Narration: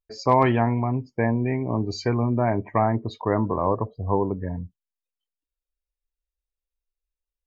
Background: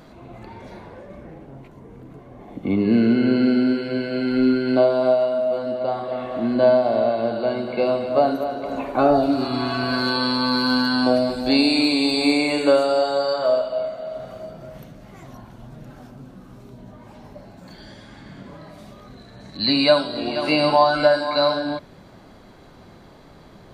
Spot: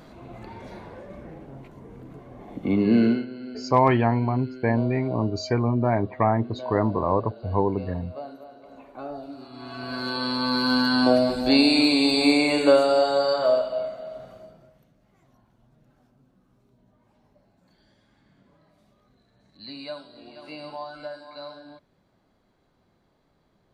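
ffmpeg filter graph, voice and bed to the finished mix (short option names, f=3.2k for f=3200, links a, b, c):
-filter_complex "[0:a]adelay=3450,volume=0dB[a];[1:a]volume=17.5dB,afade=t=out:st=3.05:d=0.21:silence=0.125893,afade=t=in:st=9.53:d=1.49:silence=0.112202,afade=t=out:st=13.35:d=1.41:silence=0.1[b];[a][b]amix=inputs=2:normalize=0"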